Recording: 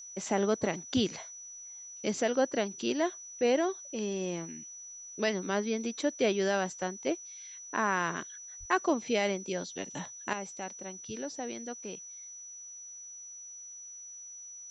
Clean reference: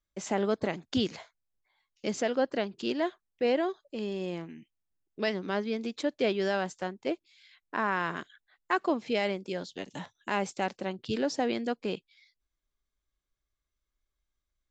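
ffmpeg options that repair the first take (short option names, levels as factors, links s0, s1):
-filter_complex "[0:a]bandreject=f=5900:w=30,asplit=3[s0][s1][s2];[s0]afade=t=out:st=8.59:d=0.02[s3];[s1]highpass=f=140:w=0.5412,highpass=f=140:w=1.3066,afade=t=in:st=8.59:d=0.02,afade=t=out:st=8.71:d=0.02[s4];[s2]afade=t=in:st=8.71:d=0.02[s5];[s3][s4][s5]amix=inputs=3:normalize=0,agate=range=0.0891:threshold=0.0112,asetnsamples=n=441:p=0,asendcmd='10.33 volume volume 9.5dB',volume=1"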